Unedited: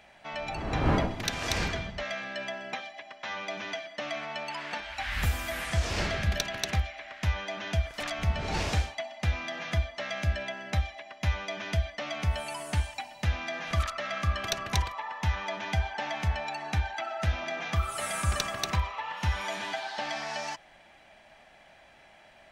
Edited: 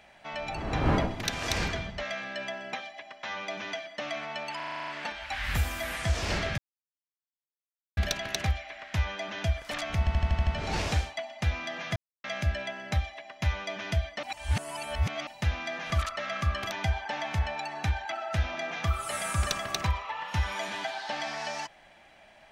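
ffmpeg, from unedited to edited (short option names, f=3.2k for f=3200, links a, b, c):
-filter_complex "[0:a]asplit=21[a][b][c][d][e][f][g][h][i][j][k][l][m][n][o][p][q][r][s][t][u];[a]atrim=end=4.602[v];[b]atrim=start=4.558:end=4.602[w];[c]atrim=start=4.558:end=4.602[x];[d]atrim=start=4.558:end=4.602[y];[e]atrim=start=4.558:end=4.602[z];[f]atrim=start=4.558:end=4.602[aa];[g]atrim=start=4.558:end=4.602[ab];[h]atrim=start=4.558:end=4.602[ac];[i]atrim=start=4.558:end=6.26,asetpts=PTS-STARTPTS,afade=t=out:st=1.698:d=0.004:c=hsin,apad=pad_dur=1.39[ad];[j]atrim=start=6.26:end=8.362,asetpts=PTS-STARTPTS,afade=t=in:d=0.004:c=hsin[ae];[k]atrim=start=8.278:end=8.362[af];[l]atrim=start=8.278:end=8.362[ag];[m]atrim=start=8.278:end=8.362[ah];[n]atrim=start=8.278:end=8.362[ai];[o]atrim=start=8.278:end=8.362[aj];[p]atrim=start=8.278:end=9.77,asetpts=PTS-STARTPTS,afade=t=out:st=1.488:d=0.004:c=hsin[ak];[q]atrim=start=9.77:end=10.05,asetpts=PTS-STARTPTS,volume=0[al];[r]atrim=start=10.05:end=12.042,asetpts=PTS-STARTPTS,afade=t=in:d=0.004:c=hsin[am];[s]atrim=start=12.038:end=13.082,asetpts=PTS-STARTPTS,areverse[an];[t]atrim=start=13.078:end=14.522[ao];[u]atrim=start=15.598[ap];[v][w]acrossfade=d=0.004:c1=hsin:c2=hsin[aq];[aq][x]acrossfade=d=0.004:c1=hsin:c2=hsin[ar];[ar][y]acrossfade=d=0.004:c1=hsin:c2=hsin[as];[as][z]acrossfade=d=0.004:c1=hsin:c2=hsin[at];[at][aa]acrossfade=d=0.004:c1=hsin:c2=hsin[au];[au][ab]acrossfade=d=0.004:c1=hsin:c2=hsin[av];[av][ac]acrossfade=d=0.004:c1=hsin:c2=hsin[aw];[ad][ae]concat=n=2:v=0:a=1[ax];[aw][ax]acrossfade=d=0.004:c1=hsin:c2=hsin[ay];[ay][af]acrossfade=d=0.004:c1=hsin:c2=hsin[az];[az][ag]acrossfade=d=0.004:c1=hsin:c2=hsin[ba];[ba][ah]acrossfade=d=0.004:c1=hsin:c2=hsin[bb];[bb][ai]acrossfade=d=0.004:c1=hsin:c2=hsin[bc];[bc][aj]acrossfade=d=0.004:c1=hsin:c2=hsin[bd];[ak][al][am]concat=n=3:v=0:a=1[be];[bd][be]acrossfade=d=0.004:c1=hsin:c2=hsin[bf];[bf][an]acrossfade=d=0.004:c1=hsin:c2=hsin[bg];[bg][ao]acrossfade=d=0.004:c1=hsin:c2=hsin[bh];[bh][ap]acrossfade=d=0.004:c1=hsin:c2=hsin"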